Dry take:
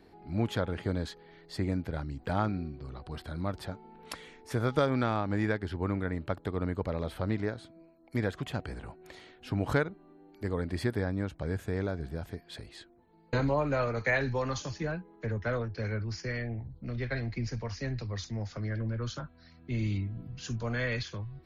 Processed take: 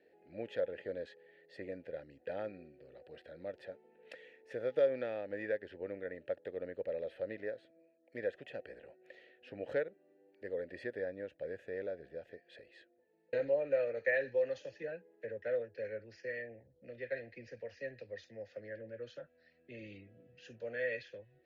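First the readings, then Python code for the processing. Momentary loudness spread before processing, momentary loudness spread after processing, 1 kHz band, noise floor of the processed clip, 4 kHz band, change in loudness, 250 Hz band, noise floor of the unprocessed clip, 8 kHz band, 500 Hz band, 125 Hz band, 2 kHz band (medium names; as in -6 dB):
14 LU, 22 LU, -17.5 dB, -71 dBFS, under -10 dB, -6.5 dB, -16.5 dB, -58 dBFS, under -20 dB, -1.5 dB, -25.5 dB, -6.5 dB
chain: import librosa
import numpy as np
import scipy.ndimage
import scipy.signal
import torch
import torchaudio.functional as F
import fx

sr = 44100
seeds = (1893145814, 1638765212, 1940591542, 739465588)

y = fx.vowel_filter(x, sr, vowel='e')
y = F.gain(torch.from_numpy(y), 3.5).numpy()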